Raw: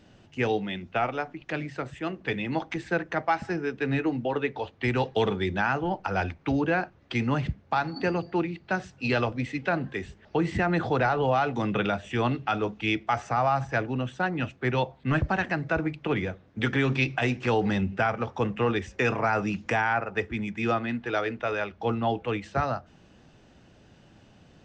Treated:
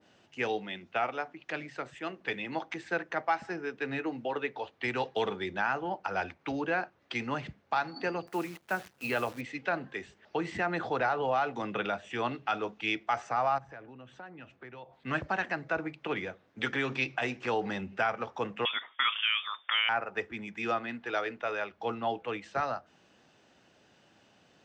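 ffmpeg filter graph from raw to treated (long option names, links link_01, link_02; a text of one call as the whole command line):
ffmpeg -i in.wav -filter_complex "[0:a]asettb=1/sr,asplit=3[link_01][link_02][link_03];[link_01]atrim=end=8.274[link_04];[link_02]atrim=start=8.27:end=9.41,asetpts=PTS-STARTPTS,afade=type=in:duration=0.004:curve=qsin,afade=type=out:start_time=1.136:duration=0.004:curve=qsin,bass=frequency=250:gain=1,treble=frequency=4000:gain=-12,acrusher=bits=8:dc=4:mix=0:aa=0.000001[link_05];[link_03]atrim=start=9.406[link_06];[link_04][link_05]acrossfade=duration=0.004:curve1=hsin:curve2=qsin[link_07];[link_07][link_06]acrossfade=duration=0.004:curve1=qsin:curve2=hsin,asettb=1/sr,asplit=3[link_08][link_09][link_10];[link_08]atrim=end=13.584[link_11];[link_09]atrim=start=13.58:end=14.93,asetpts=PTS-STARTPTS,afade=type=in:duration=0.004:curve=qsin,afade=type=out:start_time=1.346:duration=0.004:curve=qsin,lowpass=frequency=2100:poles=1,acompressor=threshold=-39dB:ratio=5:attack=3.2:release=140:knee=1:detection=peak,lowshelf=frequency=77:gain=11[link_12];[link_10]atrim=start=14.926[link_13];[link_11][link_12]acrossfade=duration=0.004:curve1=hsin:curve2=qsin[link_14];[link_14][link_13]acrossfade=duration=0.004:curve1=qsin:curve2=hsin,asettb=1/sr,asplit=3[link_15][link_16][link_17];[link_15]atrim=end=18.654[link_18];[link_16]atrim=start=18.65:end=19.89,asetpts=PTS-STARTPTS,afade=type=in:duration=0.004:curve=qsin,afade=type=out:start_time=1.236:duration=0.004:curve=qsin,highpass=430,equalizer=frequency=2900:width_type=o:width=0.87:gain=5,lowpass=frequency=3200:width_type=q:width=0.5098,lowpass=frequency=3200:width_type=q:width=0.6013,lowpass=frequency=3200:width_type=q:width=0.9,lowpass=frequency=3200:width_type=q:width=2.563,afreqshift=-3800[link_19];[link_17]atrim=start=19.886[link_20];[link_18][link_19]acrossfade=duration=0.004:curve1=hsin:curve2=qsin[link_21];[link_21][link_20]acrossfade=duration=0.004:curve1=qsin:curve2=hsin,highpass=frequency=550:poles=1,adynamicequalizer=threshold=0.00891:dfrequency=1800:dqfactor=0.7:tfrequency=1800:tqfactor=0.7:attack=5:release=100:ratio=0.375:range=2:mode=cutabove:tftype=highshelf,volume=-2dB" out.wav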